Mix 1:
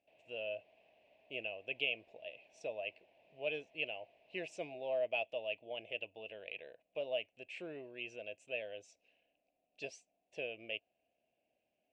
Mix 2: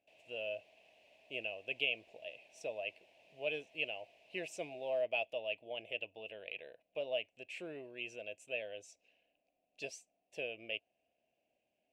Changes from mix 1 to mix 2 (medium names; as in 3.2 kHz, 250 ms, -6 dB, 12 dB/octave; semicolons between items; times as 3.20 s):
background: remove low-pass 1.7 kHz 6 dB/octave; master: remove distance through air 80 m